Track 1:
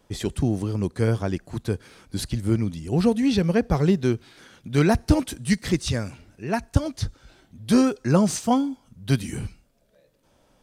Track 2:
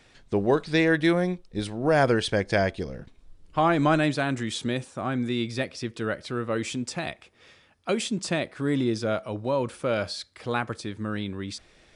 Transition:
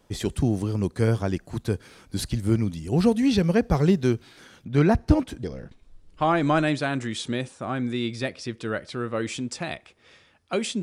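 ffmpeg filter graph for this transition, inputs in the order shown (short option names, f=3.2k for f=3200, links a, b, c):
-filter_complex "[0:a]asettb=1/sr,asplit=3[a][b][c];[a]atrim=end=4.644[d];[b]atrim=start=4.64:end=5.43,asetpts=PTS-STARTPTS,afade=t=in:d=0.004:c=qsin,afade=t=out:st=0.786:d=0.004:c=qsin,lowpass=f=1.9k:p=1[e];[c]atrim=start=5.426[f];[d][e]acrossfade=d=0.004:c1=hsin:c2=qsin[g];[g][f]acrossfade=d=0.004:c1=qsin:c2=hsin,apad=whole_dur=10.82,atrim=end=10.82,atrim=end=5.432[h];[1:a]atrim=start=2.788:end=8.18[i];[h][i]acrossfade=d=0.004:c1=hsin:c2=hsin"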